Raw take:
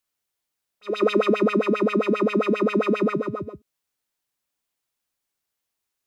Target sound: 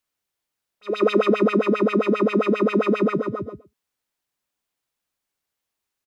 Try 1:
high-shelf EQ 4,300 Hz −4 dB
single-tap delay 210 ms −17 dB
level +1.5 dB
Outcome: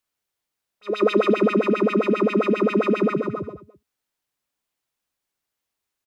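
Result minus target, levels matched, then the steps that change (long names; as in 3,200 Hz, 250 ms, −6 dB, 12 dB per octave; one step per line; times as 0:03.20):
echo 95 ms late
change: single-tap delay 115 ms −17 dB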